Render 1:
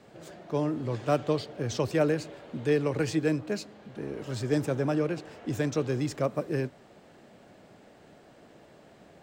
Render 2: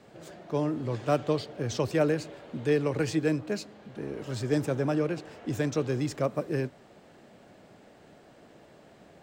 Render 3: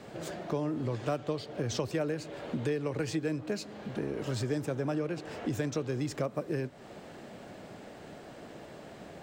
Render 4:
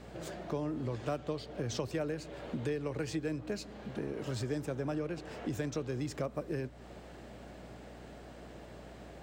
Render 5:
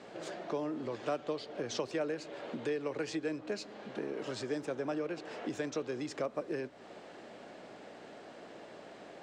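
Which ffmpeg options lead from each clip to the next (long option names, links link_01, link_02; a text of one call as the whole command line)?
ffmpeg -i in.wav -af anull out.wav
ffmpeg -i in.wav -af "acompressor=threshold=-38dB:ratio=4,volume=7dB" out.wav
ffmpeg -i in.wav -af "aeval=exprs='val(0)+0.00316*(sin(2*PI*60*n/s)+sin(2*PI*2*60*n/s)/2+sin(2*PI*3*60*n/s)/3+sin(2*PI*4*60*n/s)/4+sin(2*PI*5*60*n/s)/5)':channel_layout=same,volume=-3.5dB" out.wav
ffmpeg -i in.wav -af "highpass=290,lowpass=6700,volume=2dB" out.wav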